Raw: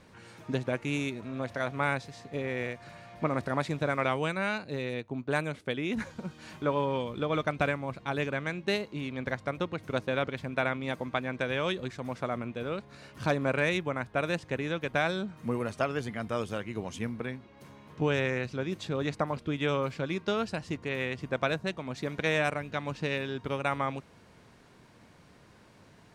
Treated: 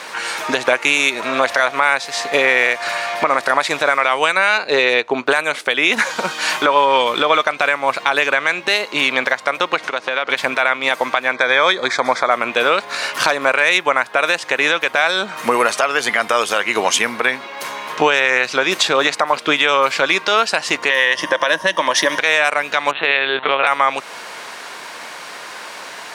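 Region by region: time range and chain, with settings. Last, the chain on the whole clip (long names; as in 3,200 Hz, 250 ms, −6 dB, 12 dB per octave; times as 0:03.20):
0:04.57–0:05.27: low-pass filter 6,400 Hz + parametric band 420 Hz +6 dB 0.38 octaves
0:09.78–0:10.30: band-pass filter 120–6,100 Hz + downward compressor 5 to 1, threshold −43 dBFS
0:11.33–0:12.31: Butterworth band-reject 2,800 Hz, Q 3.7 + high-frequency loss of the air 63 metres
0:20.90–0:22.19: downward compressor 2.5 to 1, threshold −34 dBFS + EQ curve with evenly spaced ripples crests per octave 1.2, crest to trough 12 dB
0:22.91–0:23.67: mains-hum notches 50/100/150/200/250/300 Hz + linear-prediction vocoder at 8 kHz pitch kept
whole clip: high-pass filter 820 Hz 12 dB per octave; downward compressor 4 to 1, threshold −41 dBFS; boost into a limiter +31.5 dB; level −1 dB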